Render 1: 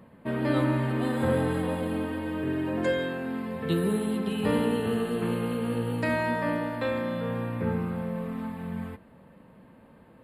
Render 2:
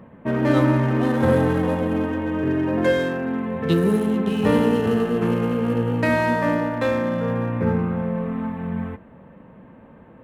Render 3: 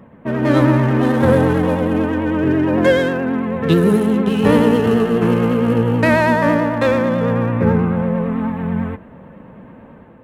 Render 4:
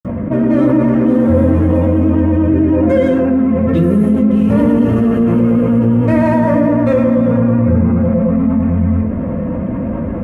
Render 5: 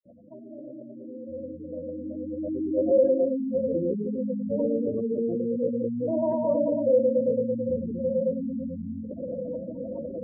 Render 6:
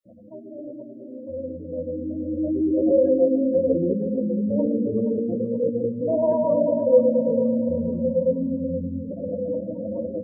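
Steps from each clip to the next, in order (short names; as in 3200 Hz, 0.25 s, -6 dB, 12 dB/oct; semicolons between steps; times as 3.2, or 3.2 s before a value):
Wiener smoothing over 9 samples; gain +7.5 dB
AGC gain up to 5 dB; vibrato 9.1 Hz 51 cents; gain +1.5 dB
reverb RT60 0.30 s, pre-delay 47 ms; fast leveller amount 70%; gain +3 dB
spectral gate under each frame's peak -15 dB strong; vibrato 0.38 Hz 26 cents; band-pass sweep 2300 Hz -> 510 Hz, 0.77–2.87; gain -5.5 dB
flange 0.2 Hz, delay 9.3 ms, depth 3.6 ms, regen +17%; feedback echo 0.476 s, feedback 41%, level -10.5 dB; gain +7.5 dB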